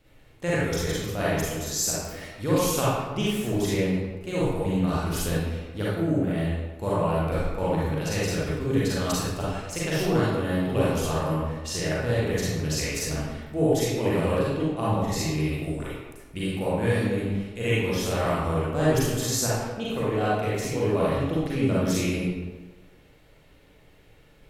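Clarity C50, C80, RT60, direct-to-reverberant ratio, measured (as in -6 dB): -5.0 dB, 0.5 dB, 1.3 s, -8.5 dB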